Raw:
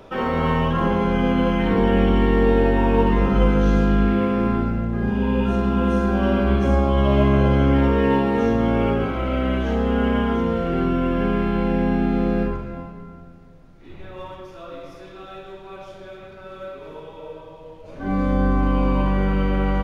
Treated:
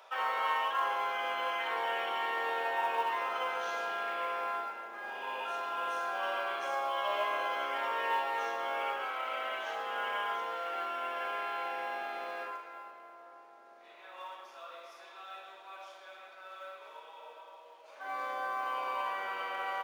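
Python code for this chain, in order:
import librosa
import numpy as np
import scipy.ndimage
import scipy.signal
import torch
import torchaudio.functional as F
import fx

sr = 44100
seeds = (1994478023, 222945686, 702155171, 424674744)

y = fx.octave_divider(x, sr, octaves=1, level_db=1.0)
y = scipy.signal.sosfilt(scipy.signal.butter(4, 740.0, 'highpass', fs=sr, output='sos'), y)
y = fx.quant_float(y, sr, bits=4)
y = fx.echo_filtered(y, sr, ms=852, feedback_pct=80, hz=1400.0, wet_db=-17.5)
y = y * 10.0 ** (-5.0 / 20.0)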